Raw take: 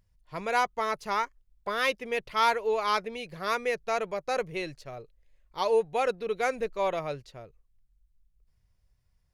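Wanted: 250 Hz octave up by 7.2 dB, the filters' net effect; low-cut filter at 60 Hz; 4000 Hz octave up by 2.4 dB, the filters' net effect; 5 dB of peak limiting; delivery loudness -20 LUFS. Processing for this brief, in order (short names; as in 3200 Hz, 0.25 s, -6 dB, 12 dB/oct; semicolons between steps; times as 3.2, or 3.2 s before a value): HPF 60 Hz; bell 250 Hz +9 dB; bell 4000 Hz +3 dB; gain +9.5 dB; limiter -8 dBFS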